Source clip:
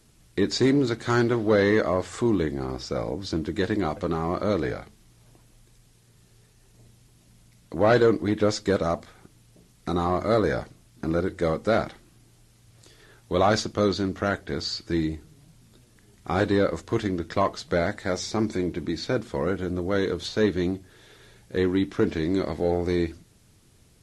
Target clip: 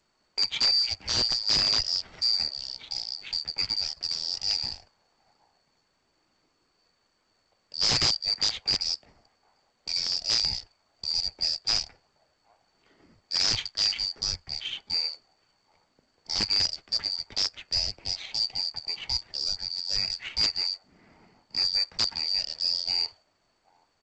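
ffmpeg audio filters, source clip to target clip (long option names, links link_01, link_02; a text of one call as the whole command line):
ffmpeg -i in.wav -filter_complex "[0:a]afftfilt=real='real(if(lt(b,272),68*(eq(floor(b/68),0)*1+eq(floor(b/68),1)*2+eq(floor(b/68),2)*3+eq(floor(b/68),3)*0)+mod(b,68),b),0)':imag='imag(if(lt(b,272),68*(eq(floor(b/68),0)*1+eq(floor(b/68),1)*2+eq(floor(b/68),2)*3+eq(floor(b/68),3)*0)+mod(b,68),b),0)':win_size=2048:overlap=0.75,lowpass=frequency=6200:width=0.5412,lowpass=frequency=6200:width=1.3066,highshelf=frequency=2700:gain=-3.5,acrossover=split=110|830|1400[link_01][link_02][link_03][link_04];[link_02]acompressor=threshold=-54dB:ratio=5[link_05];[link_03]aecho=1:1:772|1544:0.266|0.0426[link_06];[link_01][link_05][link_06][link_04]amix=inputs=4:normalize=0,adynamicsmooth=sensitivity=5.5:basefreq=1800,aeval=exprs='(mod(6.31*val(0)+1,2)-1)/6.31':channel_layout=same" -ar 16000 -c:a g722 out.g722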